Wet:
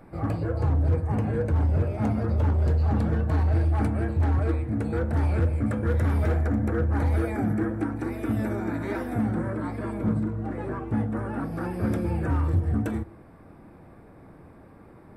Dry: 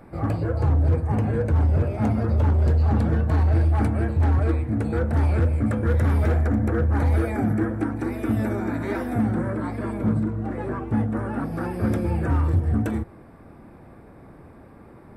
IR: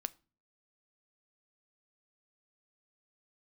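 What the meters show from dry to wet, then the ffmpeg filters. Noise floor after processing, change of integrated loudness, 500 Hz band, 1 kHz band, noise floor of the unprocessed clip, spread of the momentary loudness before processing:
-50 dBFS, -3.0 dB, -2.5 dB, -3.0 dB, -47 dBFS, 7 LU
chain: -filter_complex "[1:a]atrim=start_sample=2205[a];[0:a][a]afir=irnorm=-1:irlink=0,volume=-1.5dB"

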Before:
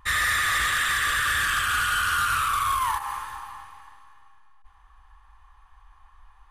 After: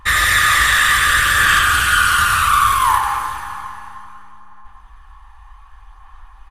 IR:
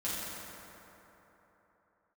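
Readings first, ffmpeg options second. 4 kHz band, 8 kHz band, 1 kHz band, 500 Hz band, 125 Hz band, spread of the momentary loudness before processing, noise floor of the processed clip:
+10.0 dB, +10.0 dB, +10.5 dB, +10.5 dB, +12.0 dB, 12 LU, -43 dBFS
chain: -filter_complex "[0:a]aecho=1:1:94:0.501,asplit=2[a][b];[1:a]atrim=start_sample=2205,asetrate=43659,aresample=44100[c];[b][c]afir=irnorm=-1:irlink=0,volume=-13.5dB[d];[a][d]amix=inputs=2:normalize=0,aphaser=in_gain=1:out_gain=1:delay=1.1:decay=0.2:speed=0.65:type=sinusoidal,volume=7.5dB"

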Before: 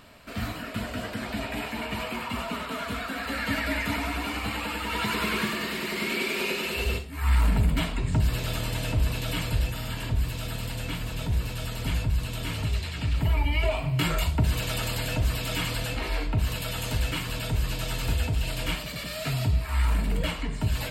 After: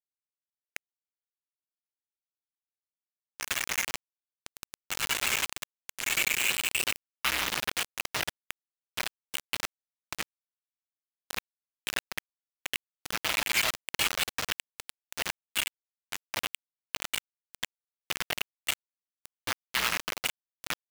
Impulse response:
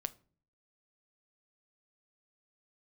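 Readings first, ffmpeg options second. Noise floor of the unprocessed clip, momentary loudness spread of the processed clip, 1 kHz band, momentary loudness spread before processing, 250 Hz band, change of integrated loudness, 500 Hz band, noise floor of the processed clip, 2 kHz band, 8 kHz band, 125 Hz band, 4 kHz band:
-36 dBFS, 15 LU, -5.5 dB, 7 LU, -18.0 dB, -3.0 dB, -11.5 dB, under -85 dBFS, -1.0 dB, +4.0 dB, -26.5 dB, 0.0 dB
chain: -filter_complex "[0:a]acrossover=split=3000[a][b];[a]aeval=exprs='(mod(10.6*val(0)+1,2)-1)/10.6':c=same[c];[c][b]amix=inputs=2:normalize=0,afftfilt=real='re*gte(hypot(re,im),0.0501)':imag='im*gte(hypot(re,im),0.0501)':win_size=1024:overlap=0.75,bandpass=f=2.9k:t=q:w=1.4:csg=0,acrusher=bits=4:mix=0:aa=0.000001,volume=5.5dB"

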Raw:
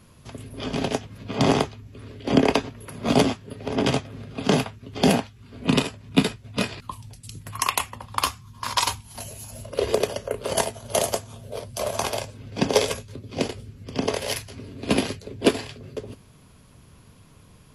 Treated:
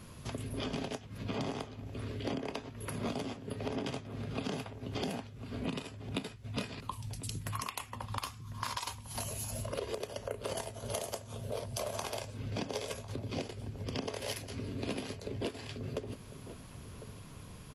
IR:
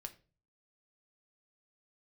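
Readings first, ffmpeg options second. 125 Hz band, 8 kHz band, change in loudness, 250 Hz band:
-9.0 dB, -12.5 dB, -14.5 dB, -14.5 dB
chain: -filter_complex "[0:a]alimiter=limit=-14.5dB:level=0:latency=1:release=456,acompressor=threshold=-37dB:ratio=6,asplit=2[a][b];[b]adelay=1050,volume=-13dB,highshelf=f=4k:g=-23.6[c];[a][c]amix=inputs=2:normalize=0,volume=2dB"

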